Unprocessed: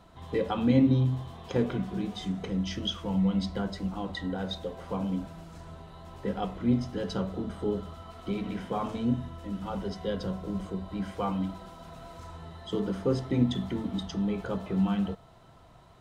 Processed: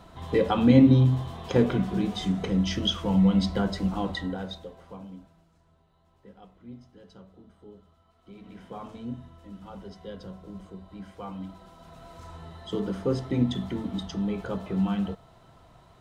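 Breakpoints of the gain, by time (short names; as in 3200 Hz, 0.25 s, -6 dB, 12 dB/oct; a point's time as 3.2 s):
4.06 s +5.5 dB
4.71 s -7 dB
5.59 s -19 dB
8.18 s -19 dB
8.67 s -8.5 dB
11.22 s -8.5 dB
12.34 s +0.5 dB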